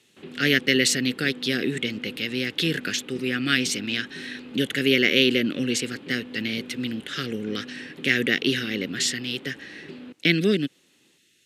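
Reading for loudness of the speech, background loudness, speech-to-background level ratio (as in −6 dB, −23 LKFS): −24.0 LKFS, −41.5 LKFS, 17.5 dB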